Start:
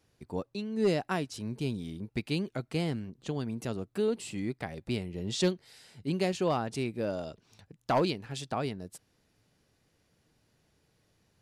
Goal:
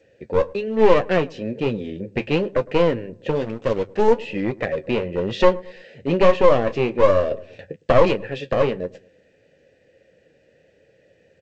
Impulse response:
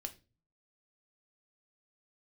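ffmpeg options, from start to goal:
-filter_complex "[0:a]asplit=3[link_01][link_02][link_03];[link_01]bandpass=frequency=530:width_type=q:width=8,volume=0dB[link_04];[link_02]bandpass=frequency=1840:width_type=q:width=8,volume=-6dB[link_05];[link_03]bandpass=frequency=2480:width_type=q:width=8,volume=-9dB[link_06];[link_04][link_05][link_06]amix=inputs=3:normalize=0,aemphasis=mode=reproduction:type=bsi,asettb=1/sr,asplit=3[link_07][link_08][link_09];[link_07]atrim=end=3.354[link_10];[link_08]atrim=start=3.35:end=4.12,asetpts=PTS-STARTPTS,afade=type=in:duration=0.004:curve=qsin,afade=type=out:start_time=0.766:duration=0.004:curve=qsin,aeval=exprs='sgn(val(0))*max(abs(val(0))-0.00141,0)':channel_layout=same[link_11];[link_09]atrim=start=4.116[link_12];[link_10][link_11]acrossfade=duration=0.004:curve1=hsin:curve2=qsin[link_13];[link_13][link_12]acrossfade=duration=0.004:curve1=qsin:curve2=hsin,bandreject=frequency=50:width_type=h:width=6,bandreject=frequency=100:width_type=h:width=6,aeval=exprs='clip(val(0),-1,0.00473)':channel_layout=same,asettb=1/sr,asplit=3[link_14][link_15][link_16];[link_14]atrim=end=6.014[link_17];[link_15]atrim=start=6.01:end=6.79,asetpts=PTS-STARTPTS,afade=type=in:duration=0.004:curve=qsin,afade=type=out:start_time=0.776:duration=0.004:curve=qsin,asplit=2[link_18][link_19];[link_19]adelay=30,volume=-13.5dB[link_20];[link_18][link_20]amix=inputs=2:normalize=0,atrim=end_sample=34398[link_21];[link_16]atrim=start=6.786[link_22];[link_17][link_21]acrossfade=duration=0.004:curve1=hsin:curve2=qsin[link_23];[link_23][link_22]acrossfade=duration=0.004:curve1=qsin:curve2=hsin,flanger=delay=9.1:depth=3.9:regen=-47:speed=1.1:shape=sinusoidal,asplit=2[link_24][link_25];[link_25]adelay=109,lowpass=frequency=870:poles=1,volume=-21dB,asplit=2[link_26][link_27];[link_27]adelay=109,lowpass=frequency=870:poles=1,volume=0.45,asplit=2[link_28][link_29];[link_29]adelay=109,lowpass=frequency=870:poles=1,volume=0.45[link_30];[link_26][link_28][link_30]amix=inputs=3:normalize=0[link_31];[link_24][link_31]amix=inputs=2:normalize=0,asettb=1/sr,asplit=3[link_32][link_33][link_34];[link_32]atrim=end=7.314[link_35];[link_33]atrim=start=7.31:end=7.76,asetpts=PTS-STARTPTS,afade=type=in:duration=0.004:curve=qsin,afade=type=out:start_time=0.446:duration=0.004:curve=qsin,acontrast=43[link_36];[link_34]atrim=start=7.756[link_37];[link_35][link_36]acrossfade=duration=0.004:curve1=hsin:curve2=qsin[link_38];[link_38][link_37]acrossfade=duration=0.004:curve1=qsin:curve2=hsin,alimiter=level_in=30.5dB:limit=-1dB:release=50:level=0:latency=1,volume=-1dB" -ar 16000 -c:a g722

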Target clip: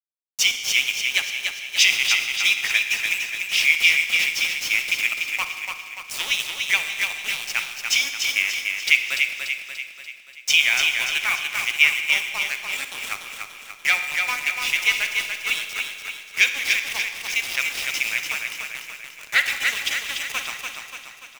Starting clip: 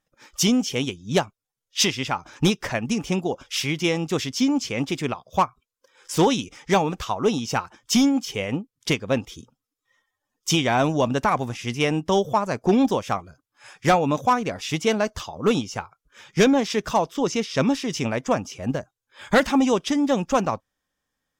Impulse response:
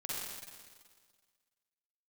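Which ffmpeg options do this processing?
-filter_complex "[0:a]highpass=frequency=2300:width_type=q:width=5,aeval=exprs='val(0)*gte(abs(val(0)),0.0447)':channel_layout=same,aecho=1:1:291|582|873|1164|1455|1746|2037:0.562|0.298|0.158|0.0837|0.0444|0.0235|0.0125,asplit=2[link_01][link_02];[1:a]atrim=start_sample=2205[link_03];[link_02][link_03]afir=irnorm=-1:irlink=0,volume=-7.5dB[link_04];[link_01][link_04]amix=inputs=2:normalize=0,volume=-1.5dB"

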